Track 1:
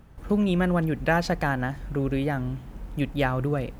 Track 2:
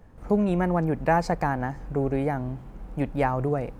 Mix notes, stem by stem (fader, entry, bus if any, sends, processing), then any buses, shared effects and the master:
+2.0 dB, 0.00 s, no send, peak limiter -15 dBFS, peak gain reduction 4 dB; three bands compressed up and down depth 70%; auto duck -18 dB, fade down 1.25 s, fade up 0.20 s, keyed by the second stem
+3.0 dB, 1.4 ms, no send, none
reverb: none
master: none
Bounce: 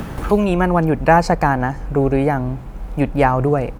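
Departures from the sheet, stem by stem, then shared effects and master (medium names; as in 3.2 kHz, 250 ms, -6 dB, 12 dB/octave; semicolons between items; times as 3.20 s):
stem 1 +2.0 dB -> +9.5 dB; stem 2 +3.0 dB -> +10.0 dB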